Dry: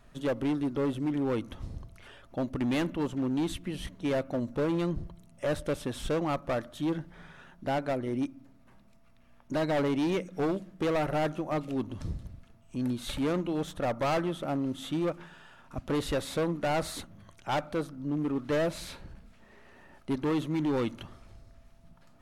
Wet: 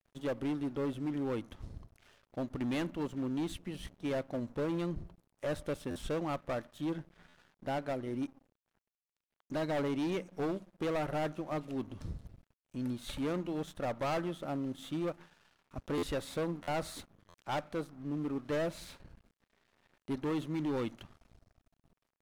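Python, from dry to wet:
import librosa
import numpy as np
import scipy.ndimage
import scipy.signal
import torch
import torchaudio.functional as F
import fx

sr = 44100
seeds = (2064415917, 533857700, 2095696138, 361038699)

y = np.sign(x) * np.maximum(np.abs(x) - 10.0 ** (-51.5 / 20.0), 0.0)
y = fx.buffer_glitch(y, sr, at_s=(5.9, 7.28, 8.56, 15.97, 16.62, 17.29), block=512, repeats=4)
y = y * librosa.db_to_amplitude(-5.0)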